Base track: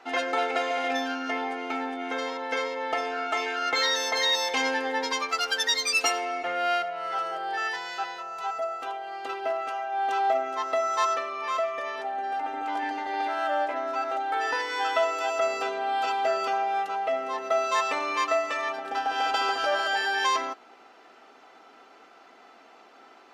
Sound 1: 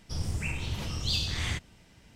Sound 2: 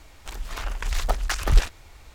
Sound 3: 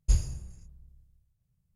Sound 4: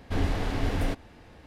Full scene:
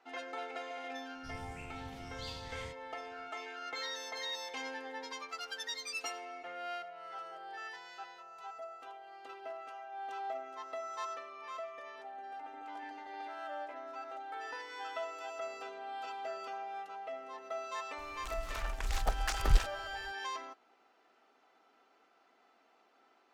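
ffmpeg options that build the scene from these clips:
ffmpeg -i bed.wav -i cue0.wav -i cue1.wav -filter_complex "[0:a]volume=-15.5dB[link_01];[1:a]atrim=end=2.15,asetpts=PTS-STARTPTS,volume=-16.5dB,afade=type=in:duration=0.004:curve=hsin,afade=type=out:start_time=2.146:duration=0.004:curve=hsin,adelay=1140[link_02];[2:a]atrim=end=2.14,asetpts=PTS-STARTPTS,volume=-8.5dB,afade=type=in:duration=0.004:curve=hsin,afade=type=out:start_time=2.136:duration=0.004:curve=hsin,adelay=17980[link_03];[link_01][link_02][link_03]amix=inputs=3:normalize=0" out.wav

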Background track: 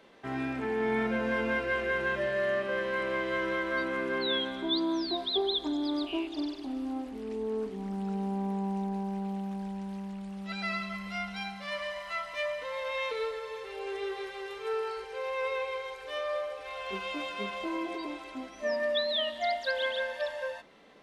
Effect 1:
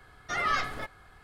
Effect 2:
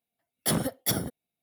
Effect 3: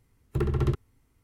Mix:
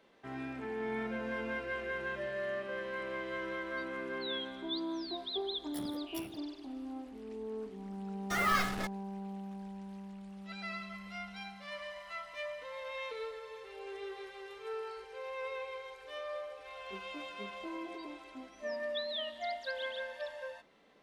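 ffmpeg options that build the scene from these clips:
ffmpeg -i bed.wav -i cue0.wav -i cue1.wav -filter_complex "[0:a]volume=-8dB[link_01];[2:a]aeval=exprs='val(0)*sin(2*PI*37*n/s)':channel_layout=same[link_02];[1:a]acrusher=bits=5:mix=0:aa=0.5[link_03];[link_02]atrim=end=1.42,asetpts=PTS-STARTPTS,volume=-18dB,afade=type=in:duration=0.004:curve=hsin,afade=type=out:start_time=1.416:duration=0.004:curve=hsin,adelay=5280[link_04];[link_03]atrim=end=1.23,asetpts=PTS-STARTPTS,volume=-2dB,afade=type=in:duration=0.004:curve=hsin,afade=type=out:start_time=1.226:duration=0.004:curve=hsin,adelay=8010[link_05];[link_01][link_04][link_05]amix=inputs=3:normalize=0" out.wav

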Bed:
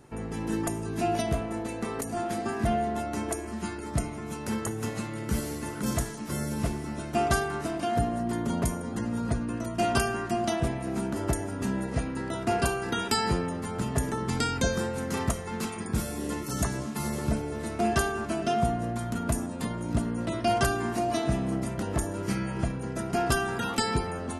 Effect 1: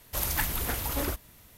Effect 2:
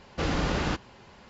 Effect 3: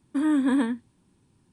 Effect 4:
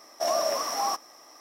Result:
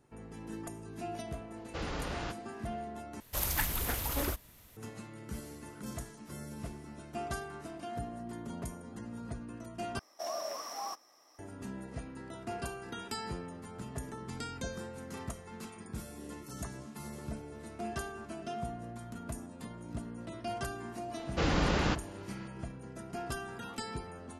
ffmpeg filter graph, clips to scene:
ffmpeg -i bed.wav -i cue0.wav -i cue1.wav -i cue2.wav -i cue3.wav -filter_complex "[2:a]asplit=2[link_01][link_02];[0:a]volume=-13dB[link_03];[link_01]equalizer=frequency=220:width_type=o:width=0.77:gain=-8[link_04];[1:a]aresample=32000,aresample=44100[link_05];[link_03]asplit=3[link_06][link_07][link_08];[link_06]atrim=end=3.204[link_09];[link_05]atrim=end=1.57,asetpts=PTS-STARTPTS,volume=-3dB[link_10];[link_07]atrim=start=4.766:end=9.994[link_11];[4:a]atrim=end=1.4,asetpts=PTS-STARTPTS,volume=-12dB[link_12];[link_08]atrim=start=11.386[link_13];[link_04]atrim=end=1.29,asetpts=PTS-STARTPTS,volume=-9.5dB,afade=type=in:duration=0.004:curve=hsin,afade=type=out:start_time=1.286:duration=0.004:curve=hsin,adelay=1560[link_14];[link_02]atrim=end=1.29,asetpts=PTS-STARTPTS,volume=-1.5dB,afade=type=in:duration=0.004:curve=hsin,afade=type=out:start_time=1.286:duration=0.004:curve=hsin,adelay=21190[link_15];[link_09][link_10]acrossfade=duration=0.004:curve1=hsin:curve2=hsin[link_16];[link_16][link_11]acrossfade=duration=0.004:curve1=hsin:curve2=hsin[link_17];[link_17][link_12]acrossfade=duration=0.004:curve1=hsin:curve2=hsin[link_18];[link_18][link_13]acrossfade=duration=0.004:curve1=hsin:curve2=hsin[link_19];[link_19][link_14][link_15]amix=inputs=3:normalize=0" out.wav

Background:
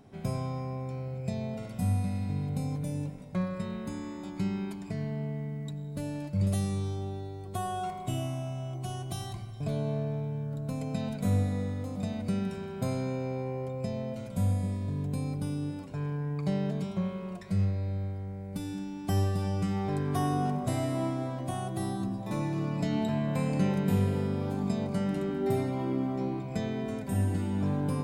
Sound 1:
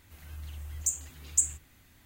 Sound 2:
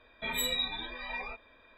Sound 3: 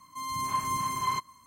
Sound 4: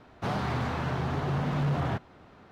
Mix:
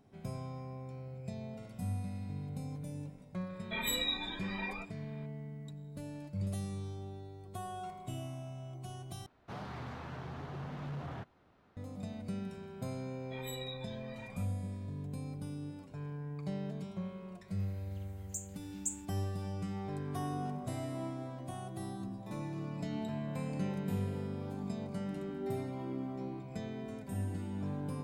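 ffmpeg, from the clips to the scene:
ffmpeg -i bed.wav -i cue0.wav -i cue1.wav -i cue2.wav -i cue3.wav -filter_complex "[2:a]asplit=2[link_01][link_02];[0:a]volume=-9dB,asplit=2[link_03][link_04];[link_03]atrim=end=9.264[link_05];[4:a]atrim=end=2.51,asetpts=PTS-STARTPTS,volume=-13.5dB[link_06];[link_04]atrim=start=11.766[link_07];[link_01]atrim=end=1.77,asetpts=PTS-STARTPTS,volume=-2.5dB,afade=type=in:duration=0.004:curve=hsin,afade=type=out:start_time=1.766:duration=0.004:curve=hsin,adelay=153909S[link_08];[link_02]atrim=end=1.77,asetpts=PTS-STARTPTS,volume=-14dB,afade=type=in:duration=0.004:curve=hsin,afade=type=out:start_time=1.766:duration=0.004:curve=hsin,adelay=13090[link_09];[1:a]atrim=end=2.05,asetpts=PTS-STARTPTS,volume=-12.5dB,afade=type=in:duration=0.004:curve=hsin,afade=type=out:start_time=2.046:duration=0.004:curve=hsin,adelay=770868S[link_10];[link_05][link_06]acrossfade=duration=0.004:curve1=hsin:curve2=hsin[link_11];[link_11][link_07]acrossfade=duration=0.004:curve1=hsin:curve2=hsin[link_12];[link_12][link_08][link_09][link_10]amix=inputs=4:normalize=0" out.wav

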